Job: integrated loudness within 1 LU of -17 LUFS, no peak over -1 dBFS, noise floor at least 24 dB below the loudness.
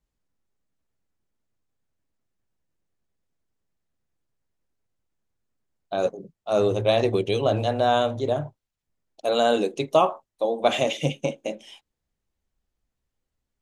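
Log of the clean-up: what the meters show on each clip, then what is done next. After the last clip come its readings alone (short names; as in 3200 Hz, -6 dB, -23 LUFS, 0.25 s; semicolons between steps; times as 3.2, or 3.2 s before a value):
loudness -24.0 LUFS; peak -6.0 dBFS; loudness target -17.0 LUFS
-> gain +7 dB; limiter -1 dBFS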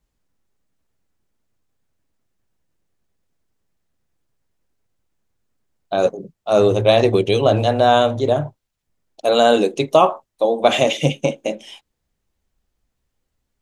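loudness -17.0 LUFS; peak -1.0 dBFS; noise floor -77 dBFS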